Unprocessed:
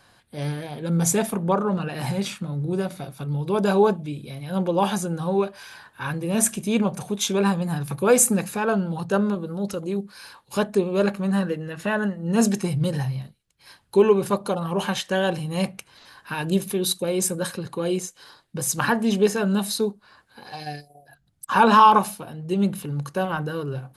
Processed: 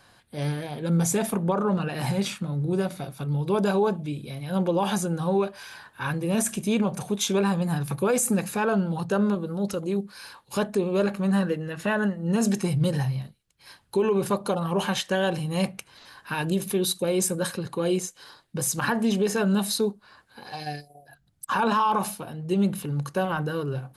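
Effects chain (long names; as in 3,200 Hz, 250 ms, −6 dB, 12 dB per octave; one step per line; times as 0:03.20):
brickwall limiter −15 dBFS, peak gain reduction 10.5 dB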